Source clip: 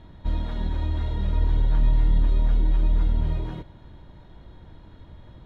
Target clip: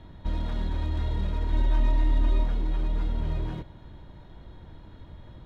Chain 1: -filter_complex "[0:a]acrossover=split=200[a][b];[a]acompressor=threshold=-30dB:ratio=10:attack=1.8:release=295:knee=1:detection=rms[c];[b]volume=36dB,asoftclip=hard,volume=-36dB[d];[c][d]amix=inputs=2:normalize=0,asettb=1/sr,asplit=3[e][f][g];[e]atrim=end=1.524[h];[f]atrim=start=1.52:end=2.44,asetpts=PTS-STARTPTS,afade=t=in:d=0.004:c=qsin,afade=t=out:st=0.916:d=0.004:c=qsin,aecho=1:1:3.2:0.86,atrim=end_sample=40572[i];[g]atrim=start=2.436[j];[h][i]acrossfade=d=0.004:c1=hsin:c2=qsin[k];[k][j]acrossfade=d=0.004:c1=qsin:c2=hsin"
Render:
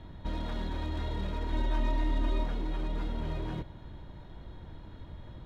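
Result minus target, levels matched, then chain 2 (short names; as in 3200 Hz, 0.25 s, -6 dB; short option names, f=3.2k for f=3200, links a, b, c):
compressor: peak gain reduction +7 dB
-filter_complex "[0:a]acrossover=split=200[a][b];[a]acompressor=threshold=-22dB:ratio=10:attack=1.8:release=295:knee=1:detection=rms[c];[b]volume=36dB,asoftclip=hard,volume=-36dB[d];[c][d]amix=inputs=2:normalize=0,asettb=1/sr,asplit=3[e][f][g];[e]atrim=end=1.524[h];[f]atrim=start=1.52:end=2.44,asetpts=PTS-STARTPTS,afade=t=in:d=0.004:c=qsin,afade=t=out:st=0.916:d=0.004:c=qsin,aecho=1:1:3.2:0.86,atrim=end_sample=40572[i];[g]atrim=start=2.436[j];[h][i]acrossfade=d=0.004:c1=hsin:c2=qsin[k];[k][j]acrossfade=d=0.004:c1=qsin:c2=hsin"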